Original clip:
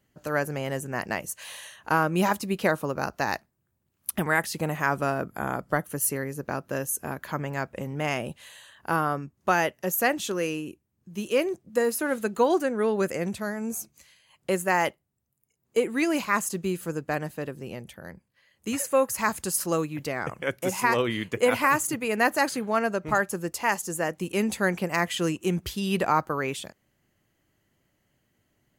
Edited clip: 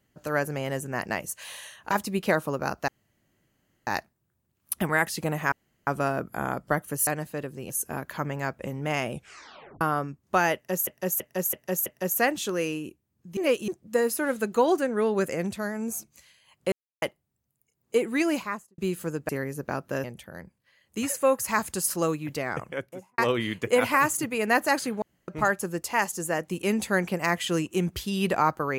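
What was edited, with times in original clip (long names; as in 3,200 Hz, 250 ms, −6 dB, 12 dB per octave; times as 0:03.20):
0:01.91–0:02.27: remove
0:03.24: splice in room tone 0.99 s
0:04.89: splice in room tone 0.35 s
0:06.09–0:06.84: swap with 0:17.11–0:17.74
0:08.26: tape stop 0.69 s
0:09.68–0:10.01: repeat, 5 plays
0:11.19–0:11.50: reverse
0:14.54–0:14.84: silence
0:16.08–0:16.60: fade out and dull
0:20.23–0:20.88: fade out and dull
0:22.72–0:22.98: fill with room tone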